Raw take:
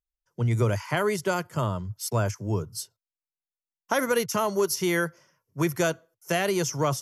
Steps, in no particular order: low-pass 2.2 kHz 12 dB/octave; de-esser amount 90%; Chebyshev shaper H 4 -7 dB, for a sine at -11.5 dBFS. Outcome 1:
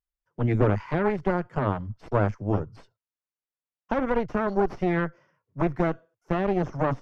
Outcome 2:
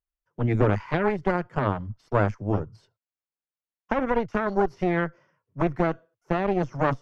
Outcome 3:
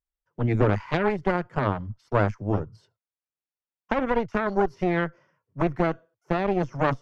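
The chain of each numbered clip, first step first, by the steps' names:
Chebyshev shaper > de-esser > low-pass; de-esser > Chebyshev shaper > low-pass; de-esser > low-pass > Chebyshev shaper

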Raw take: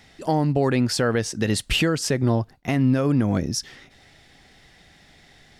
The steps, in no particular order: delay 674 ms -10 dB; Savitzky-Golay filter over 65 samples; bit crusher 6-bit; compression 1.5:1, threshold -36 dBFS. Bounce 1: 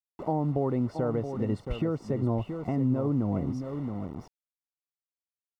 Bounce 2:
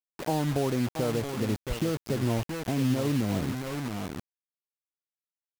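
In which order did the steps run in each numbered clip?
delay > bit crusher > compression > Savitzky-Golay filter; delay > compression > Savitzky-Golay filter > bit crusher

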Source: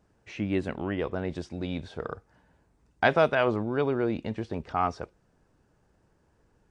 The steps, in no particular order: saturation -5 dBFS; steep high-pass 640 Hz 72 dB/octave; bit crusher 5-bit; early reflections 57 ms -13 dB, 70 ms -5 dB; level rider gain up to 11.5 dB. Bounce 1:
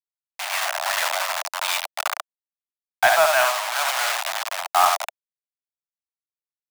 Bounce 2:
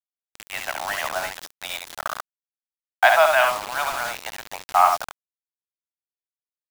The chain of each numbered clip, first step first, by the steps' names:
early reflections > bit crusher > steep high-pass > level rider > saturation; steep high-pass > saturation > level rider > early reflections > bit crusher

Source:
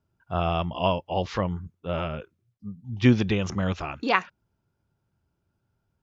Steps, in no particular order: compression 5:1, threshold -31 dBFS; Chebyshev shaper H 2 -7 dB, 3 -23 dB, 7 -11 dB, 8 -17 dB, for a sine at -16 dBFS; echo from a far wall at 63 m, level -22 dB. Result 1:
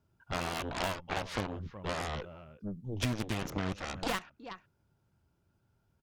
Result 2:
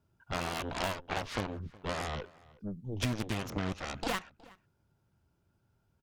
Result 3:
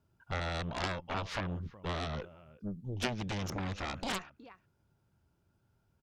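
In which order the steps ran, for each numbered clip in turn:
echo from a far wall > Chebyshev shaper > compression; Chebyshev shaper > compression > echo from a far wall; compression > echo from a far wall > Chebyshev shaper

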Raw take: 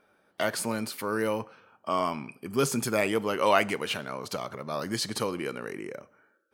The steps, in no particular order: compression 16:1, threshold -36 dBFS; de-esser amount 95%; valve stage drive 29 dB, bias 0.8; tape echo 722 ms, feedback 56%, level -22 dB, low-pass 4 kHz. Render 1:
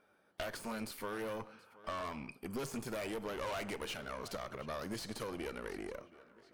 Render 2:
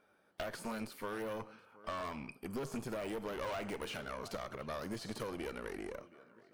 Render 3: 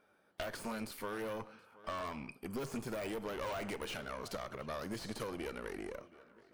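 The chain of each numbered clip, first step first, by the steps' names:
valve stage > tape echo > compression > de-esser; de-esser > tape echo > valve stage > compression; valve stage > de-esser > tape echo > compression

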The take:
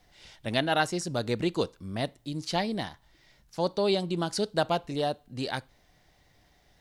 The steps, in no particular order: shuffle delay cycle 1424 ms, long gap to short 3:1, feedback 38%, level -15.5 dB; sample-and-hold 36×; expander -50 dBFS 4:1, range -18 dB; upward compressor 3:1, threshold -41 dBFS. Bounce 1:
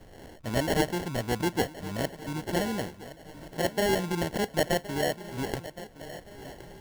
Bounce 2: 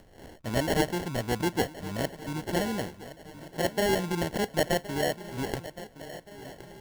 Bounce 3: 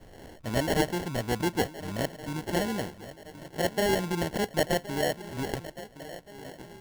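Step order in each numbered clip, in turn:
sample-and-hold > upward compressor > shuffle delay > expander; sample-and-hold > shuffle delay > expander > upward compressor; shuffle delay > upward compressor > sample-and-hold > expander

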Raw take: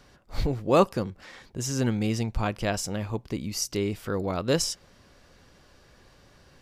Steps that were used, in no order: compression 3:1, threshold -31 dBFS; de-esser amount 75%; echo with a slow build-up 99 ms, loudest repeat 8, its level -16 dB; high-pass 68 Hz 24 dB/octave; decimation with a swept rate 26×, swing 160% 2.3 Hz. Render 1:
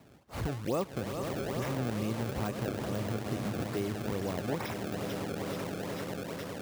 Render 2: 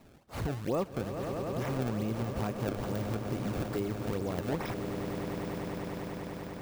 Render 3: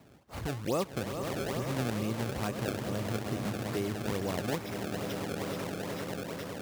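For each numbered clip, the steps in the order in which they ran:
echo with a slow build-up > decimation with a swept rate > high-pass > compression > de-esser; high-pass > decimation with a swept rate > de-esser > echo with a slow build-up > compression; echo with a slow build-up > de-esser > compression > decimation with a swept rate > high-pass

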